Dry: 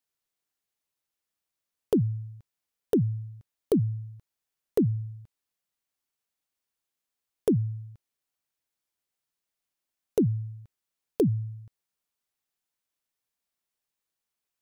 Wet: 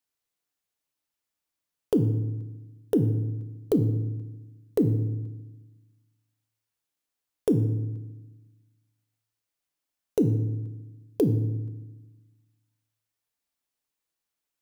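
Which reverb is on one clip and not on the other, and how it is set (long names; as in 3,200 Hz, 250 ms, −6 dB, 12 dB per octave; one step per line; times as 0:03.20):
feedback delay network reverb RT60 1.1 s, low-frequency decay 1.3×, high-frequency decay 0.7×, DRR 8 dB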